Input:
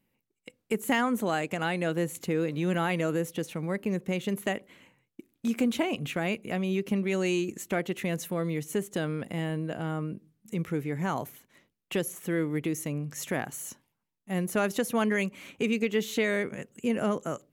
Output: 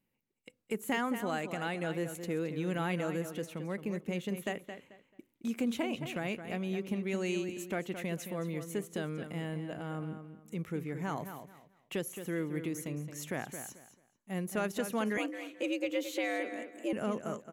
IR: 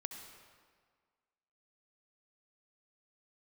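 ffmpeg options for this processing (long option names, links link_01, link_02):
-filter_complex "[0:a]asplit=2[link_01][link_02];[link_02]adelay=219,lowpass=frequency=4600:poles=1,volume=-9dB,asplit=2[link_03][link_04];[link_04]adelay=219,lowpass=frequency=4600:poles=1,volume=0.25,asplit=2[link_05][link_06];[link_06]adelay=219,lowpass=frequency=4600:poles=1,volume=0.25[link_07];[link_01][link_03][link_05][link_07]amix=inputs=4:normalize=0,asettb=1/sr,asplit=3[link_08][link_09][link_10];[link_08]atrim=end=15.174[link_11];[link_09]atrim=start=15.17:end=16.93,asetpts=PTS-STARTPTS,afade=type=in:duration=0.004:curve=qsin,afade=type=out:start_time=1.756:duration=0.004:curve=qsin,afreqshift=94[link_12];[link_10]atrim=start=16.926[link_13];[link_11][link_12]acrossfade=duration=0.004:curve1=hsin:curve2=qsin[link_14];[link_14][link_13]acrossfade=duration=0.004:curve1=qsin:curve2=hsin,volume=-6.5dB"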